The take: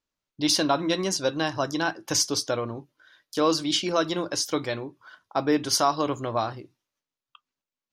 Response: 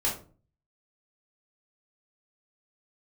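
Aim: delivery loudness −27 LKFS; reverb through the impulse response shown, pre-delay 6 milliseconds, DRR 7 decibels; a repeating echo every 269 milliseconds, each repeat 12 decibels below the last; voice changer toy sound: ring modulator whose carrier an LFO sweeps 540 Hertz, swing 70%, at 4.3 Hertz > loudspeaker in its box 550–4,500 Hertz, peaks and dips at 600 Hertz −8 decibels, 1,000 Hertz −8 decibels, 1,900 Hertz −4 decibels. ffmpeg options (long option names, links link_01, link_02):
-filter_complex "[0:a]aecho=1:1:269|538|807:0.251|0.0628|0.0157,asplit=2[link_01][link_02];[1:a]atrim=start_sample=2205,adelay=6[link_03];[link_02][link_03]afir=irnorm=-1:irlink=0,volume=-15.5dB[link_04];[link_01][link_04]amix=inputs=2:normalize=0,aeval=exprs='val(0)*sin(2*PI*540*n/s+540*0.7/4.3*sin(2*PI*4.3*n/s))':channel_layout=same,highpass=550,equalizer=frequency=600:width_type=q:width=4:gain=-8,equalizer=frequency=1000:width_type=q:width=4:gain=-8,equalizer=frequency=1900:width_type=q:width=4:gain=-4,lowpass=frequency=4500:width=0.5412,lowpass=frequency=4500:width=1.3066,volume=5.5dB"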